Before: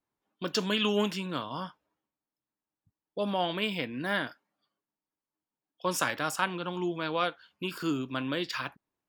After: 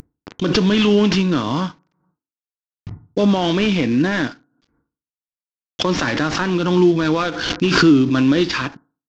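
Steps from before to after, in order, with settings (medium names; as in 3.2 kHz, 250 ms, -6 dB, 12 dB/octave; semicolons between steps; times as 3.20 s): CVSD coder 32 kbps; FDN reverb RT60 0.39 s, low-frequency decay 1.05×, high-frequency decay 0.25×, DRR 20 dB; level rider gain up to 8 dB; peak limiter -15 dBFS, peak gain reduction 7.5 dB; resonant low shelf 440 Hz +6 dB, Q 1.5; swell ahead of each attack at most 43 dB/s; trim +4.5 dB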